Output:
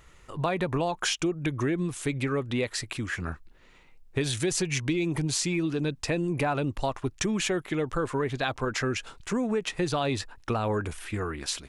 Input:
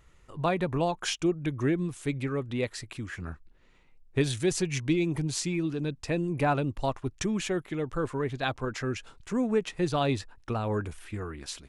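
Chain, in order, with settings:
low-shelf EQ 380 Hz −5 dB
in parallel at +2 dB: brickwall limiter −25.5 dBFS, peak gain reduction 11 dB
on the sum: downward compressor 4 to 1, threshold −25 dBFS, peak gain reduction 6 dB
level +1 dB

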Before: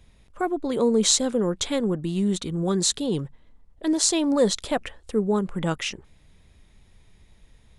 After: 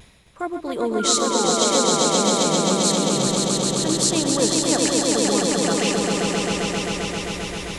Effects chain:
high-pass filter 89 Hz 6 dB per octave
low-shelf EQ 440 Hz −6 dB
reversed playback
upward compression, threshold −23 dBFS
reversed playback
sound drawn into the spectrogram fall, 0:00.99–0:01.89, 450–1,500 Hz −29 dBFS
pitch vibrato 1.8 Hz 58 cents
on a send: echo that builds up and dies away 132 ms, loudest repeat 5, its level −3.5 dB

